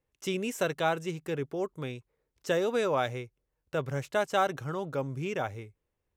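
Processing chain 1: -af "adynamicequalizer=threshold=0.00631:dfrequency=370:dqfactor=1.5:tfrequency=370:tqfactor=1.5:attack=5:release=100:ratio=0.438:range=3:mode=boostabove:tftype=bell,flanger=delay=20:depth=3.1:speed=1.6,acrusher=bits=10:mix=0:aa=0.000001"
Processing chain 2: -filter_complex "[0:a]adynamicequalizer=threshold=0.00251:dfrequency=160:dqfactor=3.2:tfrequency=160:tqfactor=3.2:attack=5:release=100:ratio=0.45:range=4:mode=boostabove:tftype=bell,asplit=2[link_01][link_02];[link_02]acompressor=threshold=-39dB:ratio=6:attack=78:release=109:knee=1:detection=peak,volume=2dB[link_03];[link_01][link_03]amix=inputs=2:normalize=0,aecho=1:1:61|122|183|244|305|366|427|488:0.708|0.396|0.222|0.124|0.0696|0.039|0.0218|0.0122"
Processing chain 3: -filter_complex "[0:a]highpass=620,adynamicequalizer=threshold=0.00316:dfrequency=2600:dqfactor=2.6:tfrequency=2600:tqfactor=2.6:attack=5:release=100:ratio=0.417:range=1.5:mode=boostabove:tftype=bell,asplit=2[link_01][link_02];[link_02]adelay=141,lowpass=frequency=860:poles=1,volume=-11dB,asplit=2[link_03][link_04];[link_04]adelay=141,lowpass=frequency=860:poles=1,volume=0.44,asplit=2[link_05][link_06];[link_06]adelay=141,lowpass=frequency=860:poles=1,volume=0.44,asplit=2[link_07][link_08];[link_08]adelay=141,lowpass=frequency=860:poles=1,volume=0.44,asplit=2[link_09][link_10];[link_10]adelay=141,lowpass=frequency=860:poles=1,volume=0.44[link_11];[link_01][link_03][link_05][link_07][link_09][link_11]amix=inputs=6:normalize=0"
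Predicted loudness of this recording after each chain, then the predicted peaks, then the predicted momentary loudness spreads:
−32.0, −25.0, −34.5 LKFS; −14.5, −8.5, −15.5 dBFS; 14, 11, 14 LU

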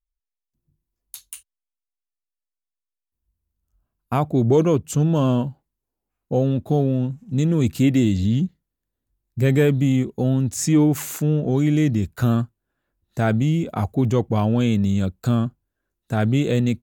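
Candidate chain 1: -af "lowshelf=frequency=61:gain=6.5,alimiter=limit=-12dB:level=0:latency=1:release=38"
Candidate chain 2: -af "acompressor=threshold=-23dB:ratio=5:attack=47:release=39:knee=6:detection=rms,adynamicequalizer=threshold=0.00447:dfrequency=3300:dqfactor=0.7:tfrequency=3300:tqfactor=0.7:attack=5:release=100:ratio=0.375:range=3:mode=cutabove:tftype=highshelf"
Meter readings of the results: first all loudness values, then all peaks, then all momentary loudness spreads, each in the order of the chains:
−22.0, −25.0 LKFS; −12.0, −10.5 dBFS; 9, 8 LU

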